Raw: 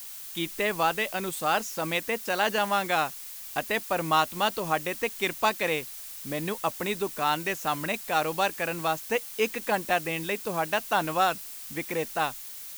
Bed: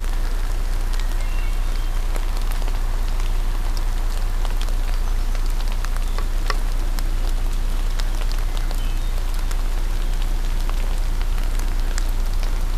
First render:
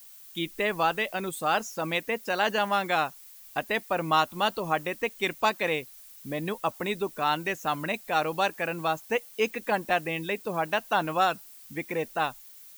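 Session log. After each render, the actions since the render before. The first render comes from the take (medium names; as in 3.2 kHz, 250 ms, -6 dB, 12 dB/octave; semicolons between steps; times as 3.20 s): noise reduction 11 dB, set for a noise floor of -41 dBFS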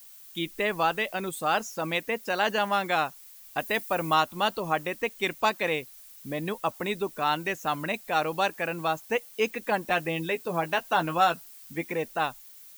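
3.59–4.14 s: treble shelf 6.6 kHz +8 dB; 9.86–11.93 s: doubling 12 ms -7 dB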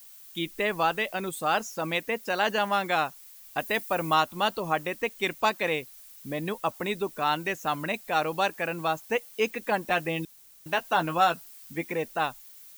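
10.25–10.66 s: room tone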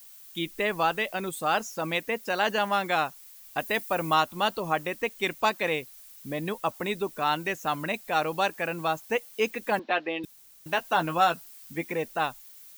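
9.79–10.24 s: elliptic band-pass 250–4100 Hz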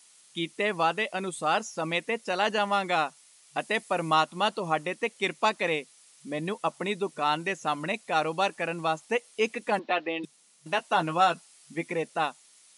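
FFT band-pass 140–11000 Hz; band-stop 1.6 kHz, Q 14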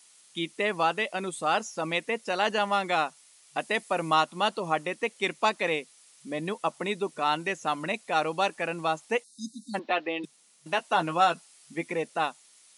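9.24–9.75 s: spectral selection erased 290–3600 Hz; high-pass 140 Hz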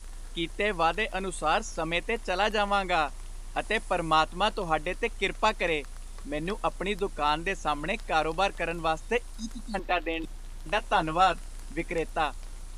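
add bed -20 dB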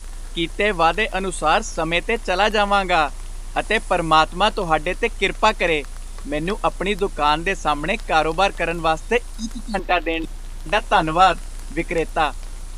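trim +8.5 dB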